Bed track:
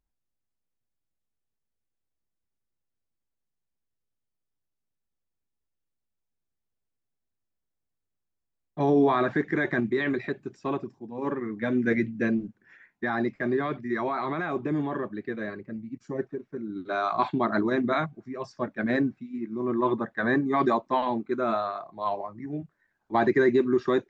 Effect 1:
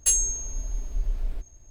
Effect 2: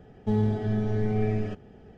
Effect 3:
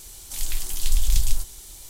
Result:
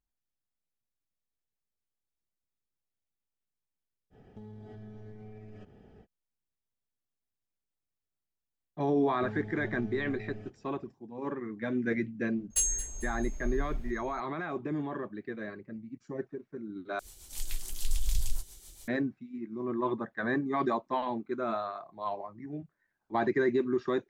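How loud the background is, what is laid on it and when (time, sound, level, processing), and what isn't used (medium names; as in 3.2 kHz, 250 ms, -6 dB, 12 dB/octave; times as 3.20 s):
bed track -6 dB
4.10 s: add 2 -6 dB, fades 0.05 s + compression 8:1, threshold -38 dBFS
8.95 s: add 2 -14 dB + peak limiter -19 dBFS
12.50 s: add 1 -6.5 dB + feedback delay 222 ms, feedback 36%, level -14.5 dB
16.99 s: replace with 3 -7.5 dB + rotary cabinet horn 7 Hz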